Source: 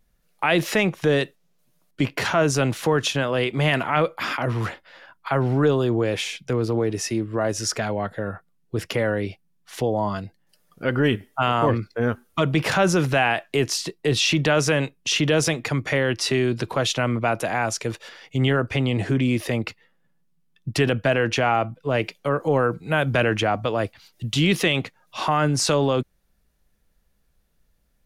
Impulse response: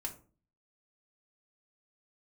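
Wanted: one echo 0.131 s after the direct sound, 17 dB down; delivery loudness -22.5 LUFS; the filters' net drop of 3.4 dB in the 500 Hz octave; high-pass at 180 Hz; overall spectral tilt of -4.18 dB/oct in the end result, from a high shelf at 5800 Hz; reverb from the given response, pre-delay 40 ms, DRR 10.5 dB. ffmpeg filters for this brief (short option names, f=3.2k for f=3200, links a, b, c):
-filter_complex "[0:a]highpass=180,equalizer=f=500:t=o:g=-4,highshelf=f=5.8k:g=-4,aecho=1:1:131:0.141,asplit=2[a][b];[1:a]atrim=start_sample=2205,adelay=40[c];[b][c]afir=irnorm=-1:irlink=0,volume=-9.5dB[d];[a][d]amix=inputs=2:normalize=0,volume=2dB"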